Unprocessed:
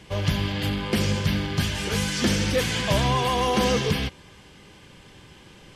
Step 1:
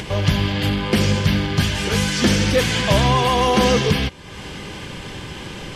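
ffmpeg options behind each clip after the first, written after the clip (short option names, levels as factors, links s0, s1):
-af "highshelf=f=9300:g=-5,acompressor=mode=upward:threshold=0.0447:ratio=2.5,volume=2"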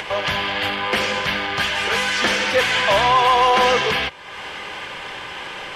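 -filter_complex "[0:a]acrossover=split=550 3100:gain=0.0891 1 0.251[s0][s1][s2];[s0][s1][s2]amix=inputs=3:normalize=0,asoftclip=type=tanh:threshold=0.211,bandreject=f=50:t=h:w=6,bandreject=f=100:t=h:w=6,bandreject=f=150:t=h:w=6,volume=2.24"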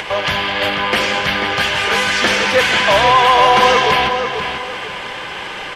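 -filter_complex "[0:a]asplit=2[s0][s1];[s1]adelay=489,lowpass=f=3200:p=1,volume=0.501,asplit=2[s2][s3];[s3]adelay=489,lowpass=f=3200:p=1,volume=0.33,asplit=2[s4][s5];[s5]adelay=489,lowpass=f=3200:p=1,volume=0.33,asplit=2[s6][s7];[s7]adelay=489,lowpass=f=3200:p=1,volume=0.33[s8];[s0][s2][s4][s6][s8]amix=inputs=5:normalize=0,volume=1.58"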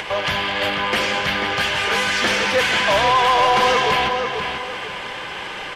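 -af "asoftclip=type=tanh:threshold=0.473,volume=0.708"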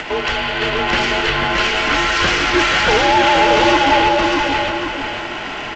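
-af "afreqshift=-160,aecho=1:1:622:0.708,volume=1.26" -ar 16000 -c:a g722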